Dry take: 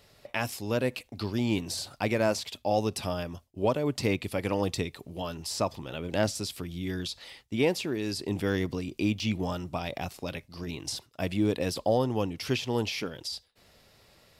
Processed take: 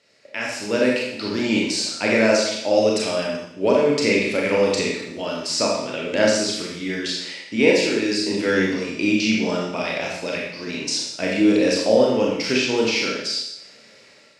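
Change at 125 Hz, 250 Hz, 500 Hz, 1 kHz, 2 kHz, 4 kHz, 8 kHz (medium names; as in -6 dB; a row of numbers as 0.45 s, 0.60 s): -1.0 dB, +9.5 dB, +11.0 dB, +5.5 dB, +13.5 dB, +11.5 dB, +11.0 dB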